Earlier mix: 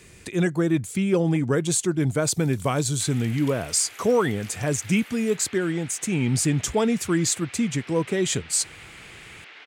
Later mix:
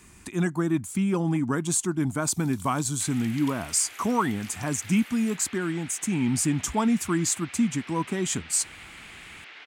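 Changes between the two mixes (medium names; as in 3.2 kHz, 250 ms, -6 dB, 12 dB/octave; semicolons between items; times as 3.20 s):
speech: add graphic EQ 125/250/500/1000/2000/4000 Hz -7/+5/-11/+7/-5/-6 dB; master: add peaking EQ 460 Hz -3.5 dB 0.7 oct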